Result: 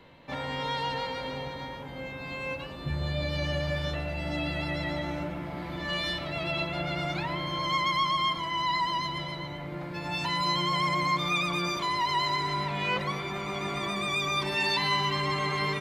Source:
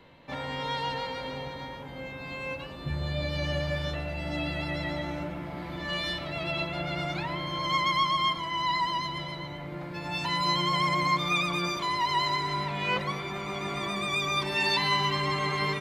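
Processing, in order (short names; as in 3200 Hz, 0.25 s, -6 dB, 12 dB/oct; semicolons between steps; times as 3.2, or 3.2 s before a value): in parallel at -2.5 dB: limiter -23 dBFS, peak gain reduction 9 dB; 6.98–9.19 on the sum: requantised 12-bit, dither none; gain -4 dB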